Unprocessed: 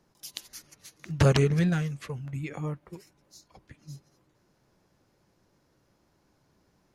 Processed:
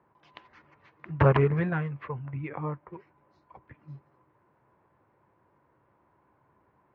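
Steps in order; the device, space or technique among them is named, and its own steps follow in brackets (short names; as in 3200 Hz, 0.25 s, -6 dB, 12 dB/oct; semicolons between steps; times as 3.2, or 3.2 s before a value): bass cabinet (speaker cabinet 83–2200 Hz, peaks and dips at 180 Hz -7 dB, 260 Hz -4 dB, 1000 Hz +10 dB); gain +1.5 dB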